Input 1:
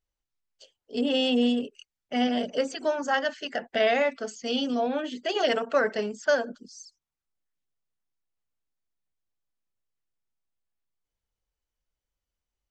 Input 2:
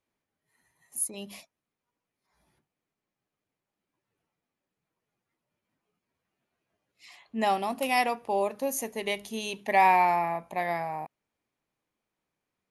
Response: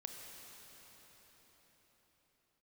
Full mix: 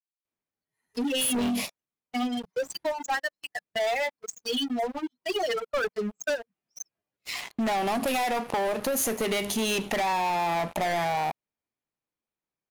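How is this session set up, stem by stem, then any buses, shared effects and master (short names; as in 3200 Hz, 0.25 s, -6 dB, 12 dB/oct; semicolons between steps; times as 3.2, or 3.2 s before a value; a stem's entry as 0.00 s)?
-6.0 dB, 0.00 s, no send, per-bin expansion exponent 3; HPF 77 Hz 6 dB/oct
+0.5 dB, 0.25 s, no send, compressor 16:1, threshold -28 dBFS, peak gain reduction 12.5 dB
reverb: off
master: sample leveller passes 5; compressor 3:1, threshold -27 dBFS, peak gain reduction 5.5 dB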